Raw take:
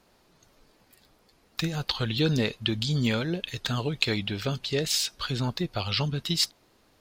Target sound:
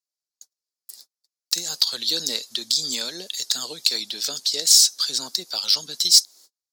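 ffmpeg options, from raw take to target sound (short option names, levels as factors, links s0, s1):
-filter_complex "[0:a]highpass=120,aemphasis=mode=production:type=bsi,agate=range=0.00891:threshold=0.00251:ratio=16:detection=peak,acrossover=split=180 7000:gain=0.112 1 0.0891[s0][s1][s2];[s0][s1][s2]amix=inputs=3:normalize=0,asplit=2[s3][s4];[s4]acompressor=threshold=0.02:ratio=6,volume=0.944[s5];[s3][s5]amix=inputs=2:normalize=0,aexciter=amount=5.8:drive=9:freq=3900,asetrate=45938,aresample=44100,volume=0.376"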